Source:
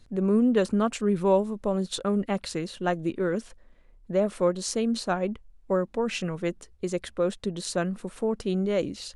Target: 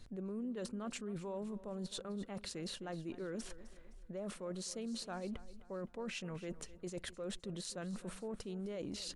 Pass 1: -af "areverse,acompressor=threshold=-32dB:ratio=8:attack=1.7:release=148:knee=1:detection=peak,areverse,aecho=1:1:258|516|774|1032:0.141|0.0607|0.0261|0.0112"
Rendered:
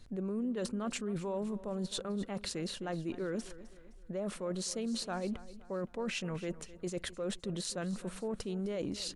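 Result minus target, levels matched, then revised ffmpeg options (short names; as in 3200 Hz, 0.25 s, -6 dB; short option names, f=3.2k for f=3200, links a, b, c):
compressor: peak gain reduction -6 dB
-af "areverse,acompressor=threshold=-39dB:ratio=8:attack=1.7:release=148:knee=1:detection=peak,areverse,aecho=1:1:258|516|774|1032:0.141|0.0607|0.0261|0.0112"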